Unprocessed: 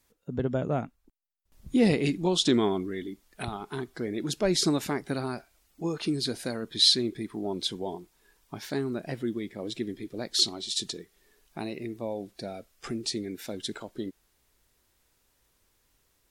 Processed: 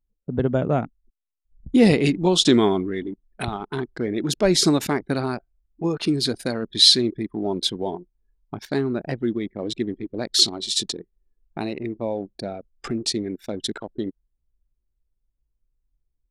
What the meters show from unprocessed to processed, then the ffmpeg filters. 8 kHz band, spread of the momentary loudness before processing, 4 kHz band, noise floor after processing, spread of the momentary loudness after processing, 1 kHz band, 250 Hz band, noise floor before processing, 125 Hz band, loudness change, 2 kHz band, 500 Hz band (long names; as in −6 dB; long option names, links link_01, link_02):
+7.0 dB, 15 LU, +7.0 dB, −77 dBFS, 16 LU, +7.0 dB, +7.0 dB, −71 dBFS, +7.0 dB, +7.0 dB, +6.5 dB, +7.0 dB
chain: -af "anlmdn=0.631,volume=7dB"